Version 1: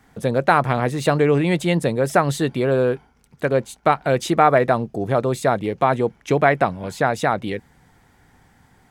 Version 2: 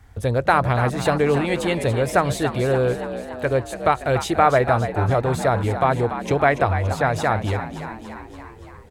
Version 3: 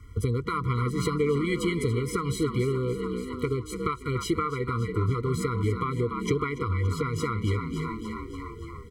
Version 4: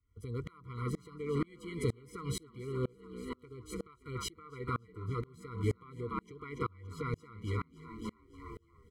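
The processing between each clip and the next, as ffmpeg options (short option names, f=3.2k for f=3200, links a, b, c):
-filter_complex "[0:a]lowshelf=f=120:t=q:w=3:g=12,asplit=8[a][b][c][d][e][f][g][h];[b]adelay=286,afreqshift=60,volume=-10.5dB[i];[c]adelay=572,afreqshift=120,volume=-14.8dB[j];[d]adelay=858,afreqshift=180,volume=-19.1dB[k];[e]adelay=1144,afreqshift=240,volume=-23.4dB[l];[f]adelay=1430,afreqshift=300,volume=-27.7dB[m];[g]adelay=1716,afreqshift=360,volume=-32dB[n];[h]adelay=2002,afreqshift=420,volume=-36.3dB[o];[a][i][j][k][l][m][n][o]amix=inputs=8:normalize=0,volume=-1dB"
-af "acompressor=threshold=-24dB:ratio=5,afftfilt=real='re*eq(mod(floor(b*sr/1024/480),2),0)':imag='im*eq(mod(floor(b*sr/1024/480),2),0)':win_size=1024:overlap=0.75,volume=2.5dB"
-af "aeval=exprs='val(0)*pow(10,-33*if(lt(mod(-2.1*n/s,1),2*abs(-2.1)/1000),1-mod(-2.1*n/s,1)/(2*abs(-2.1)/1000),(mod(-2.1*n/s,1)-2*abs(-2.1)/1000)/(1-2*abs(-2.1)/1000))/20)':c=same,volume=-2dB"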